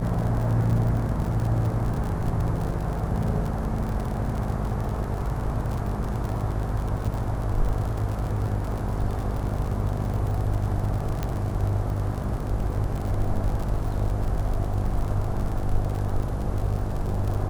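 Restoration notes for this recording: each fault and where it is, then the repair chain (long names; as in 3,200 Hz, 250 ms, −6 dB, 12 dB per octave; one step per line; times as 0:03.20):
mains buzz 50 Hz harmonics 17 −30 dBFS
surface crackle 60 per second −29 dBFS
0:11.23: click −14 dBFS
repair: click removal
hum removal 50 Hz, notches 17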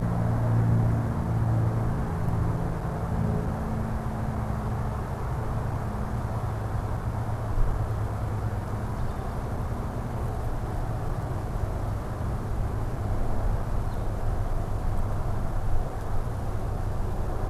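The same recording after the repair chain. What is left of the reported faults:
0:11.23: click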